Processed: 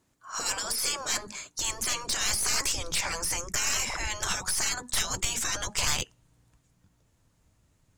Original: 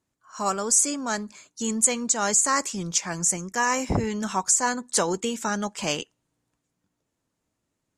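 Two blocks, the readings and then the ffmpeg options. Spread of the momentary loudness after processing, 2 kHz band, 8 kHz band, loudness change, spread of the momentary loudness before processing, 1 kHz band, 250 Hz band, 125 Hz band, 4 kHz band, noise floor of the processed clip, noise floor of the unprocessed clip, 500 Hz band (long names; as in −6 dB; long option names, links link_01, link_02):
6 LU, −1.5 dB, −5.0 dB, −4.5 dB, 10 LU, −9.0 dB, −16.5 dB, −7.0 dB, +4.0 dB, −69 dBFS, −80 dBFS, −12.0 dB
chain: -af "afftfilt=real='re*lt(hypot(re,im),0.0631)':imag='im*lt(hypot(re,im),0.0631)':win_size=1024:overlap=0.75,aeval=exprs='0.0841*(cos(1*acos(clip(val(0)/0.0841,-1,1)))-cos(1*PI/2))+0.0266*(cos(4*acos(clip(val(0)/0.0841,-1,1)))-cos(4*PI/2))+0.0133*(cos(5*acos(clip(val(0)/0.0841,-1,1)))-cos(5*PI/2))+0.00944*(cos(6*acos(clip(val(0)/0.0841,-1,1)))-cos(6*PI/2))+0.00473*(cos(7*acos(clip(val(0)/0.0841,-1,1)))-cos(7*PI/2))':channel_layout=same,asubboost=boost=5:cutoff=120,volume=5.5dB"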